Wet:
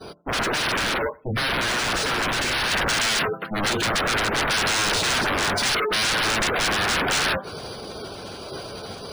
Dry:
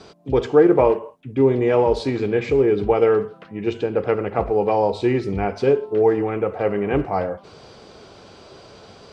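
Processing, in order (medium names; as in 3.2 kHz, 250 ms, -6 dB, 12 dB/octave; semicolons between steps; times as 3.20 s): peak limiter -14.5 dBFS, peak gain reduction 11 dB; sine folder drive 19 dB, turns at -14.5 dBFS; expander -13 dBFS; treble shelf 4.7 kHz +3.5 dB, from 2.71 s +11.5 dB; feedback echo behind a low-pass 93 ms, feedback 34%, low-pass 2.4 kHz, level -24 dB; dynamic bell 1.5 kHz, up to +5 dB, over -43 dBFS, Q 3.8; spectral gate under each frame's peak -20 dB strong; decimation joined by straight lines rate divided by 3×; trim -1.5 dB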